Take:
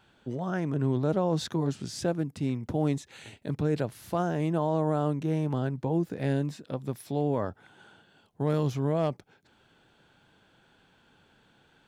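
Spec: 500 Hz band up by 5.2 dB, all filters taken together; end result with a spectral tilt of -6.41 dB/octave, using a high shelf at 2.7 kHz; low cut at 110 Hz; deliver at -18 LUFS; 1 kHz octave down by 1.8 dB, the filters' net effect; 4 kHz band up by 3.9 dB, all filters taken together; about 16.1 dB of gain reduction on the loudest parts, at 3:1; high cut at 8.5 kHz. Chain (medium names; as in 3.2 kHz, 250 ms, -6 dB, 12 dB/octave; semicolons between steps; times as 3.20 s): high-pass 110 Hz; low-pass 8.5 kHz; peaking EQ 500 Hz +8 dB; peaking EQ 1 kHz -7 dB; treble shelf 2.7 kHz -3 dB; peaking EQ 4 kHz +7.5 dB; compression 3:1, threshold -42 dBFS; trim +24 dB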